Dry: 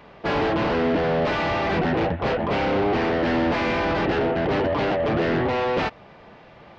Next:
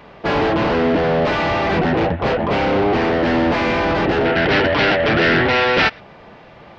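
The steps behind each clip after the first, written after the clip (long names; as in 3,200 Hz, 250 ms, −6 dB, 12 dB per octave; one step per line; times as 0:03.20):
gain on a spectral selection 0:04.25–0:06.00, 1,300–5,900 Hz +9 dB
level +5 dB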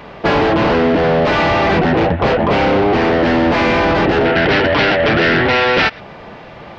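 downward compressor, threshold −18 dBFS, peak gain reduction 6.5 dB
level +7.5 dB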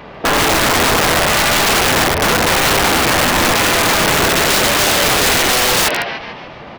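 echo with shifted repeats 146 ms, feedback 50%, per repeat +100 Hz, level −6.5 dB
wrap-around overflow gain 8.5 dB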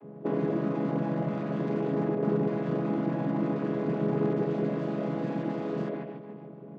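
channel vocoder with a chord as carrier minor triad, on C#3
resonant band-pass 280 Hz, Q 1.3
level −9 dB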